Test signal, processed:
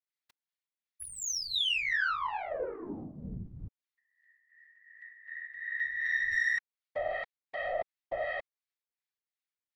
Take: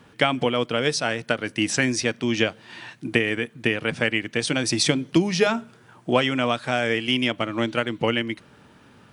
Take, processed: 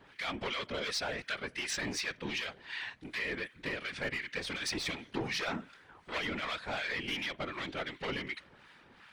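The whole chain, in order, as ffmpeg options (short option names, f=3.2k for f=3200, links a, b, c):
-filter_complex "[0:a]aeval=exprs='(tanh(15.8*val(0)+0.2)-tanh(0.2))/15.8':c=same,equalizer=f=500:t=o:w=1:g=3,equalizer=f=1k:t=o:w=1:g=5,equalizer=f=2k:t=o:w=1:g=12,equalizer=f=4k:t=o:w=1:g=9,acrossover=split=1000[a][b];[a]aeval=exprs='val(0)*(1-0.7/2+0.7/2*cos(2*PI*2.7*n/s))':c=same[c];[b]aeval=exprs='val(0)*(1-0.7/2-0.7/2*cos(2*PI*2.7*n/s))':c=same[d];[c][d]amix=inputs=2:normalize=0,alimiter=limit=-16.5dB:level=0:latency=1:release=17,afftfilt=real='hypot(re,im)*cos(2*PI*random(0))':imag='hypot(re,im)*sin(2*PI*random(1))':win_size=512:overlap=0.75,volume=-3.5dB"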